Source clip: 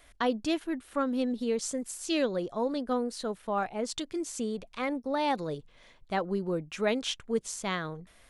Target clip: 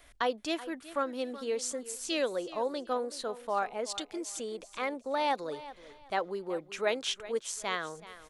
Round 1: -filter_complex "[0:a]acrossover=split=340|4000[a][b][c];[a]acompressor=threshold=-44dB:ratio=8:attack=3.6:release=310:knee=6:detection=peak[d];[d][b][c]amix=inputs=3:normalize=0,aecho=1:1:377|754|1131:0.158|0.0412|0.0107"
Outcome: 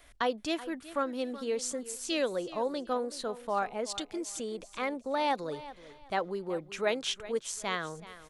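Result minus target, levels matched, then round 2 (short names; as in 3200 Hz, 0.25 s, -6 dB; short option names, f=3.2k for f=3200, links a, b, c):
compressor: peak gain reduction -8.5 dB
-filter_complex "[0:a]acrossover=split=340|4000[a][b][c];[a]acompressor=threshold=-53.5dB:ratio=8:attack=3.6:release=310:knee=6:detection=peak[d];[d][b][c]amix=inputs=3:normalize=0,aecho=1:1:377|754|1131:0.158|0.0412|0.0107"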